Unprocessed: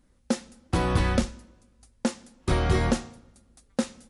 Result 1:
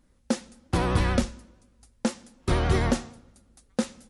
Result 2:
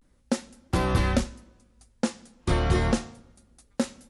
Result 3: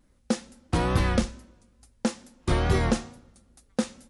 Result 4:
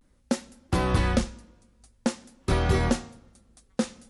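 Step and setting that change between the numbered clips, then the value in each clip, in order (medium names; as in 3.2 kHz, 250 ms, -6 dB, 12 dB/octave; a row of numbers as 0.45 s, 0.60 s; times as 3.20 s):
vibrato, rate: 11 Hz, 0.3 Hz, 2.3 Hz, 0.48 Hz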